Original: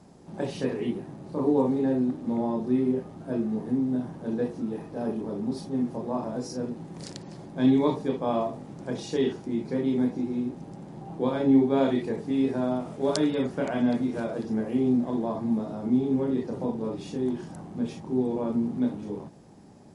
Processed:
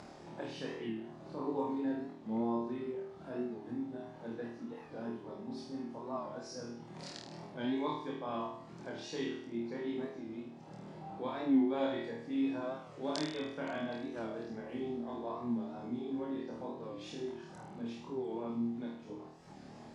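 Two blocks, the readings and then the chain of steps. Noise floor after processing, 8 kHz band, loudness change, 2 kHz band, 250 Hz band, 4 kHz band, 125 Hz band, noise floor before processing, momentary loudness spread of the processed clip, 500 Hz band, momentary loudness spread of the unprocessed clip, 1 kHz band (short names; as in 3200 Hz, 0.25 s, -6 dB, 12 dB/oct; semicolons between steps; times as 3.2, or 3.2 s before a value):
-52 dBFS, -9.5 dB, -11.5 dB, -5.5 dB, -12.0 dB, -5.5 dB, -15.0 dB, -46 dBFS, 12 LU, -11.0 dB, 12 LU, -7.0 dB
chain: reverb removal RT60 0.7 s; upward compressor, threshold -29 dBFS; LPF 4900 Hz 12 dB/oct; low shelf 430 Hz -10 dB; on a send: flutter echo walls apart 4.4 m, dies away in 0.69 s; on the sum: record warp 45 rpm, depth 100 cents; gain -7.5 dB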